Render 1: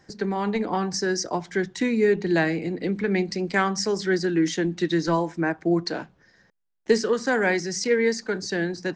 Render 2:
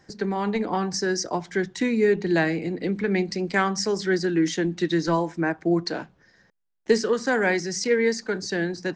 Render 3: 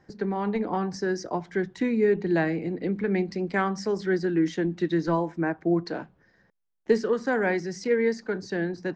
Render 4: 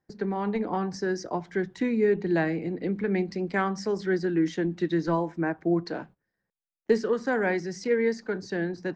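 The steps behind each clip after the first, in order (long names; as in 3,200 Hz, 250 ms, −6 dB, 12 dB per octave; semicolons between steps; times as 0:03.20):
no processing that can be heard
low-pass filter 1,600 Hz 6 dB per octave; level −1.5 dB
noise gate −46 dBFS, range −19 dB; level −1 dB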